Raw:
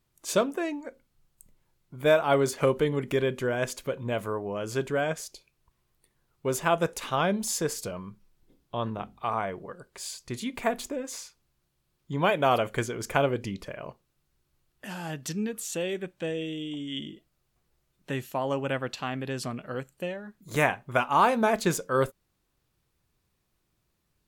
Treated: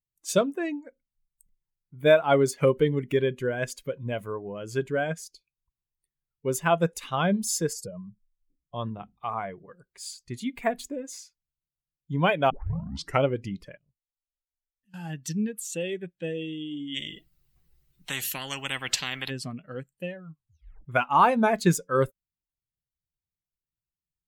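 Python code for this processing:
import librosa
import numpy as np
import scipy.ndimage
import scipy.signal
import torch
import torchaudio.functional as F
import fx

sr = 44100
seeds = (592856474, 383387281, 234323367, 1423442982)

y = fx.spec_expand(x, sr, power=1.5, at=(7.73, 8.75))
y = fx.tone_stack(y, sr, knobs='10-0-1', at=(13.77, 14.94))
y = fx.spectral_comp(y, sr, ratio=4.0, at=(16.94, 19.29), fade=0.02)
y = fx.edit(y, sr, fx.tape_start(start_s=12.5, length_s=0.74),
    fx.tape_stop(start_s=20.14, length_s=0.71), tone=tone)
y = fx.bin_expand(y, sr, power=1.5)
y = fx.peak_eq(y, sr, hz=170.0, db=5.5, octaves=0.35)
y = y * librosa.db_to_amplitude(4.0)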